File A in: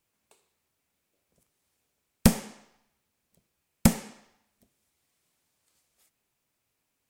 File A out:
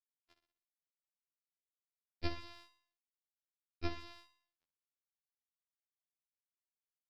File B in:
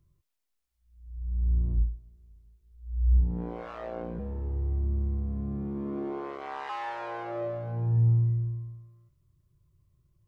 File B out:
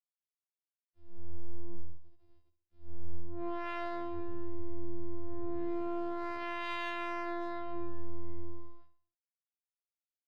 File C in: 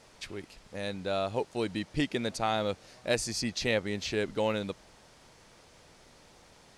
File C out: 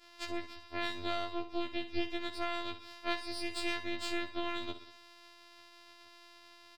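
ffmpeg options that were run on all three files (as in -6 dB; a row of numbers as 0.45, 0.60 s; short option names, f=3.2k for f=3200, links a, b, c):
-filter_complex "[0:a]afftfilt=real='hypot(re,im)*cos(PI*b)':imag='0':win_size=512:overlap=0.75,acompressor=threshold=-38dB:ratio=6,bandreject=f=50:t=h:w=6,bandreject=f=100:t=h:w=6,bandreject=f=150:t=h:w=6,bandreject=f=200:t=h:w=6,aresample=11025,aeval=exprs='sgn(val(0))*max(abs(val(0))-0.00158,0)':c=same,aresample=44100,equalizer=f=87:t=o:w=0.62:g=6.5,asplit=2[a][b];[b]aecho=0:1:62|124|186|248|310:0.282|0.135|0.0649|0.0312|0.015[c];[a][c]amix=inputs=2:normalize=0,adynamicequalizer=threshold=0.00112:dfrequency=730:dqfactor=1.3:tfrequency=730:tqfactor=1.3:attack=5:release=100:ratio=0.375:range=2.5:mode=cutabove:tftype=bell,aeval=exprs='max(val(0),0)':c=same,afftfilt=real='re*2*eq(mod(b,4),0)':imag='im*2*eq(mod(b,4),0)':win_size=2048:overlap=0.75,volume=6.5dB"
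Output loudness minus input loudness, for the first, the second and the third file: -19.5, -9.5, -6.0 LU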